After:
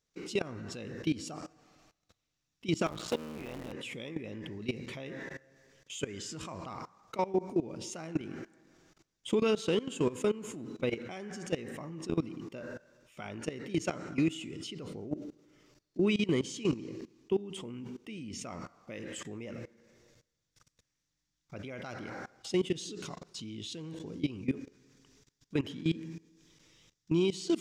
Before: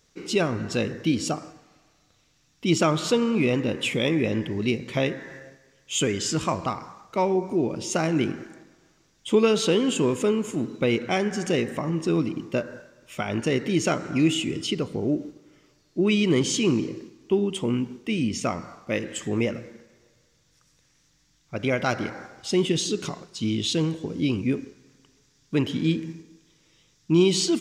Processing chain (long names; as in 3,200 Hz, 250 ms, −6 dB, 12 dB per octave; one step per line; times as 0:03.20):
0:02.86–0:03.72: sub-harmonics by changed cycles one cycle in 3, muted
output level in coarse steps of 21 dB
brickwall limiter −20 dBFS, peak gain reduction 9 dB